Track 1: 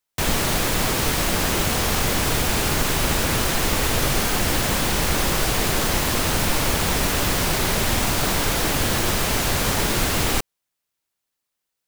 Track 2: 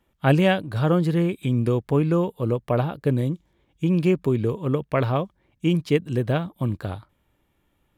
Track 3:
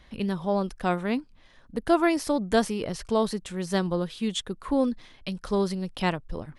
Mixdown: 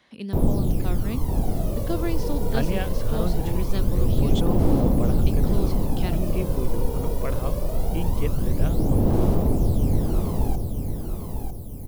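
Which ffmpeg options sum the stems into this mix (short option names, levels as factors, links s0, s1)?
-filter_complex "[0:a]firequalizer=gain_entry='entry(270,0);entry(850,-9);entry(1600,-27);entry(7100,-15);entry(11000,1)':delay=0.05:min_phase=1,aphaser=in_gain=1:out_gain=1:delay=2.1:decay=0.7:speed=0.22:type=sinusoidal,adelay=150,volume=0.562,asplit=2[s0][s1];[s1]volume=0.473[s2];[1:a]adelay=2300,volume=0.299[s3];[2:a]highpass=180,acrossover=split=370|3000[s4][s5][s6];[s5]acompressor=threshold=0.00158:ratio=1.5[s7];[s4][s7][s6]amix=inputs=3:normalize=0,volume=0.794[s8];[s2]aecho=0:1:950|1900|2850|3800|4750:1|0.39|0.152|0.0593|0.0231[s9];[s0][s3][s8][s9]amix=inputs=4:normalize=0,acrossover=split=6000[s10][s11];[s11]acompressor=threshold=0.00501:ratio=4:attack=1:release=60[s12];[s10][s12]amix=inputs=2:normalize=0"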